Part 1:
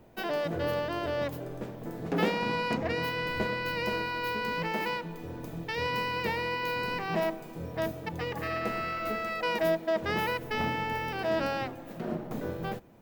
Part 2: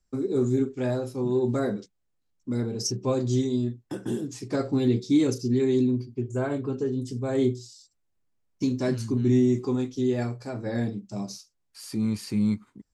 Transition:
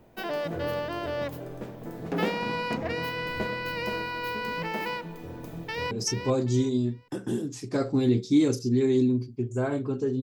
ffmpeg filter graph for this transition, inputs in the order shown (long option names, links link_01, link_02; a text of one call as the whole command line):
ffmpeg -i cue0.wav -i cue1.wav -filter_complex "[0:a]apad=whole_dur=10.22,atrim=end=10.22,atrim=end=5.912[link_01];[1:a]atrim=start=2.698:end=7.01[link_02];[link_01][link_02]acrossfade=duration=0.004:curve1=hsin:curve2=hsin,asplit=2[link_03][link_04];[link_04]afade=type=in:start_time=5.59:duration=0.01,afade=type=out:start_time=5.91:duration=0.01,aecho=0:1:390|780|1170:0.446684|0.111671|0.0279177[link_05];[link_03][link_05]amix=inputs=2:normalize=0" out.wav